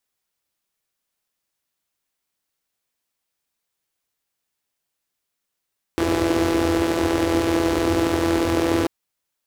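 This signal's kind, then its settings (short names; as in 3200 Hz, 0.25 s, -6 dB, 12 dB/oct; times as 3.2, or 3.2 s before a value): four-cylinder engine model, steady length 2.89 s, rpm 5000, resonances 89/320 Hz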